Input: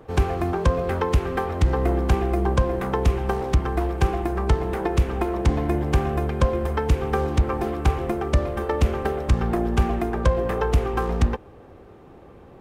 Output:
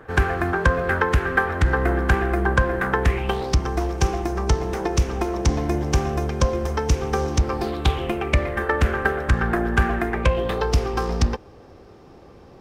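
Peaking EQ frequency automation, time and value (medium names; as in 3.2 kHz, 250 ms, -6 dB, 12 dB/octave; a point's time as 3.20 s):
peaking EQ +15 dB 0.64 oct
3.03 s 1.6 kHz
3.58 s 5.8 kHz
7.38 s 5.8 kHz
8.71 s 1.6 kHz
10.00 s 1.6 kHz
10.72 s 5.2 kHz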